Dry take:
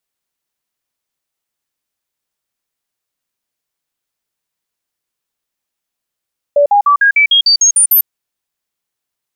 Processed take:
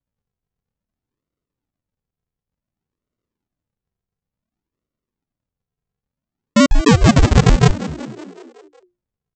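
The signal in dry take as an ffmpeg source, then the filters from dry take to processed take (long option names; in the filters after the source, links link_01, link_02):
-f lavfi -i "aevalsrc='0.531*clip(min(mod(t,0.15),0.1-mod(t,0.15))/0.005,0,1)*sin(2*PI*577*pow(2,floor(t/0.15)/2)*mod(t,0.15))':duration=1.5:sample_rate=44100"
-filter_complex "[0:a]highpass=frequency=410:width=0.5412,highpass=frequency=410:width=1.3066,aresample=16000,acrusher=samples=37:mix=1:aa=0.000001:lfo=1:lforange=37:lforate=0.56,aresample=44100,asplit=7[link_01][link_02][link_03][link_04][link_05][link_06][link_07];[link_02]adelay=186,afreqshift=59,volume=-15dB[link_08];[link_03]adelay=372,afreqshift=118,volume=-19.7dB[link_09];[link_04]adelay=558,afreqshift=177,volume=-24.5dB[link_10];[link_05]adelay=744,afreqshift=236,volume=-29.2dB[link_11];[link_06]adelay=930,afreqshift=295,volume=-33.9dB[link_12];[link_07]adelay=1116,afreqshift=354,volume=-38.7dB[link_13];[link_01][link_08][link_09][link_10][link_11][link_12][link_13]amix=inputs=7:normalize=0"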